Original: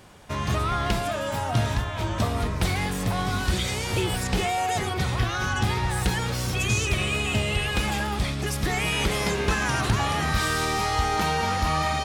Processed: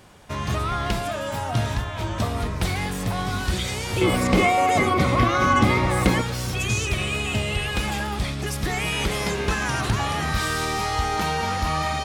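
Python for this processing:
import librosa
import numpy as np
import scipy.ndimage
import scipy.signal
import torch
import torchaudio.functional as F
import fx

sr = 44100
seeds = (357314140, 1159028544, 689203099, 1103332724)

y = fx.small_body(x, sr, hz=(280.0, 550.0, 1100.0, 2100.0), ring_ms=25, db=15, at=(4.01, 6.22))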